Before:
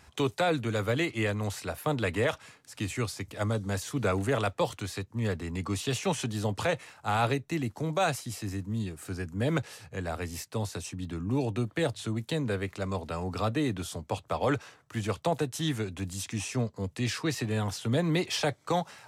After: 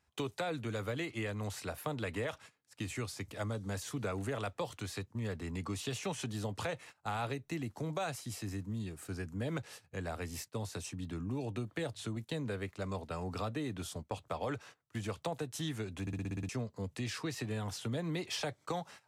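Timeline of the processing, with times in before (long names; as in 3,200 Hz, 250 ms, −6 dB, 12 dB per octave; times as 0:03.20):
0:12.16–0:14.20: noise gate −41 dBFS, range −7 dB
0:16.01: stutter in place 0.06 s, 8 plays
whole clip: noise gate −45 dBFS, range −17 dB; downward compressor 3 to 1, threshold −31 dBFS; level −4 dB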